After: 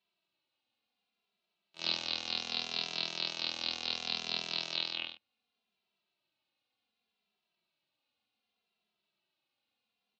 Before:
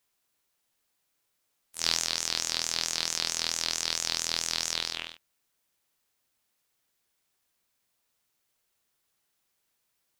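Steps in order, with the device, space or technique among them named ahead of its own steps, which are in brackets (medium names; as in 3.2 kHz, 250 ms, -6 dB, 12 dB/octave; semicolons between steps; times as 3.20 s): barber-pole flanger into a guitar amplifier (endless flanger 2.6 ms -0.67 Hz; saturation -14.5 dBFS, distortion -18 dB; cabinet simulation 110–4200 Hz, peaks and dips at 210 Hz +9 dB, 360 Hz +3 dB, 720 Hz +6 dB, 1.8 kHz -6 dB, 2.7 kHz +8 dB, 4 kHz +8 dB); trim -2.5 dB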